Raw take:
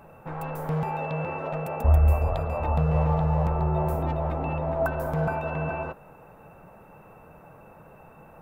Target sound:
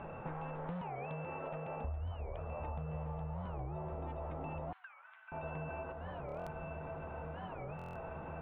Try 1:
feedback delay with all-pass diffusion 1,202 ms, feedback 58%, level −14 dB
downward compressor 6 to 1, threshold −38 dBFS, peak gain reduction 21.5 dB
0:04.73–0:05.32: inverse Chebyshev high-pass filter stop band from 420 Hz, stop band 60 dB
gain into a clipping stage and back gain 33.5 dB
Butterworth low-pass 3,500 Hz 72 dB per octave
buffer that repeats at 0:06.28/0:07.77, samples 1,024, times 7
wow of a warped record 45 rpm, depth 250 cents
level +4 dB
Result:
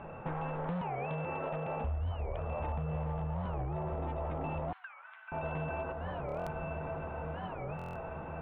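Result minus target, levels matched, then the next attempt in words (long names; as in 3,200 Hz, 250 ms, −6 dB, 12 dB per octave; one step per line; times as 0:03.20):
downward compressor: peak gain reduction −6 dB
feedback delay with all-pass diffusion 1,202 ms, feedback 58%, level −14 dB
downward compressor 6 to 1, threshold −45 dBFS, peak gain reduction 27.5 dB
0:04.73–0:05.32: inverse Chebyshev high-pass filter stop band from 420 Hz, stop band 60 dB
gain into a clipping stage and back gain 33.5 dB
Butterworth low-pass 3,500 Hz 72 dB per octave
buffer that repeats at 0:06.28/0:07.77, samples 1,024, times 7
wow of a warped record 45 rpm, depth 250 cents
level +4 dB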